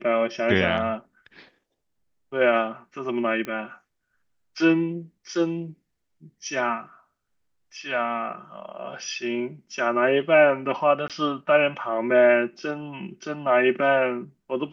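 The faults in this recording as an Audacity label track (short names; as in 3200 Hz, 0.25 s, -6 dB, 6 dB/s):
3.450000	3.450000	pop -18 dBFS
11.080000	11.100000	gap 17 ms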